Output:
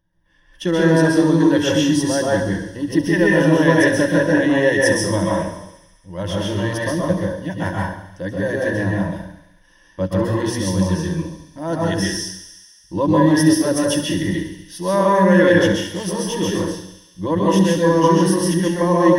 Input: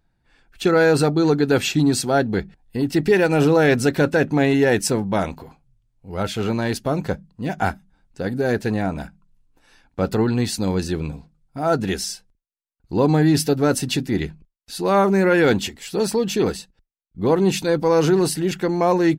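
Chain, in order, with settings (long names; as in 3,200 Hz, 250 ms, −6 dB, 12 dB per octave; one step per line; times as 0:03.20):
EQ curve with evenly spaced ripples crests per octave 1.2, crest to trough 16 dB
on a send: delay with a high-pass on its return 69 ms, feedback 79%, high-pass 2,700 Hz, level −11.5 dB
on the sum: dense smooth reverb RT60 0.73 s, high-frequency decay 0.6×, pre-delay 115 ms, DRR −4 dB
level −5.5 dB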